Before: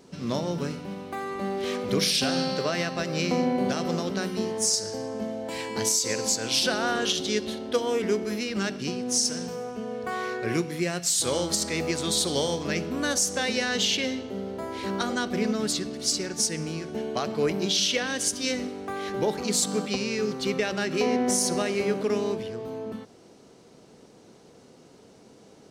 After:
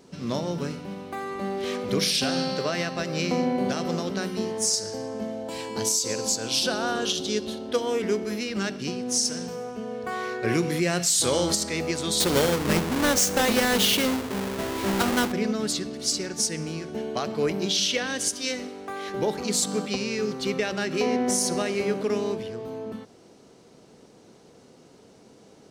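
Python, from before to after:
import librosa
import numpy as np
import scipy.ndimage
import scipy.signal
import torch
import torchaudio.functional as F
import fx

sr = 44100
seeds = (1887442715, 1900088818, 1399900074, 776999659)

y = fx.peak_eq(x, sr, hz=2000.0, db=-7.0, octaves=0.57, at=(5.43, 7.69))
y = fx.env_flatten(y, sr, amount_pct=50, at=(10.43, 11.54), fade=0.02)
y = fx.halfwave_hold(y, sr, at=(12.2, 15.32))
y = fx.peak_eq(y, sr, hz=95.0, db=-8.0, octaves=3.0, at=(18.29, 19.14))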